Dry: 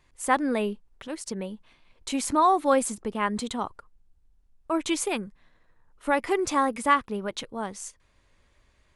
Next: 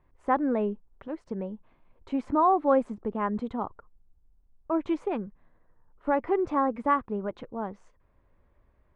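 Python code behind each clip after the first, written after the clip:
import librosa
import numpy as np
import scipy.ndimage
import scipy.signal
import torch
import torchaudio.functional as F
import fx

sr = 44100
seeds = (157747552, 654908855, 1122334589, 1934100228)

y = scipy.signal.sosfilt(scipy.signal.butter(2, 1100.0, 'lowpass', fs=sr, output='sos'), x)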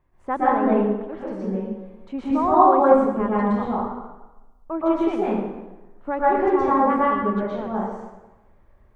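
y = fx.rev_plate(x, sr, seeds[0], rt60_s=1.1, hf_ratio=0.75, predelay_ms=105, drr_db=-8.5)
y = y * 10.0 ** (-1.5 / 20.0)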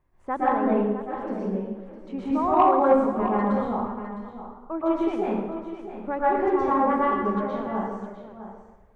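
y = 10.0 ** (-3.5 / 20.0) * np.tanh(x / 10.0 ** (-3.5 / 20.0))
y = y + 10.0 ** (-11.5 / 20.0) * np.pad(y, (int(658 * sr / 1000.0), 0))[:len(y)]
y = y * 10.0 ** (-3.0 / 20.0)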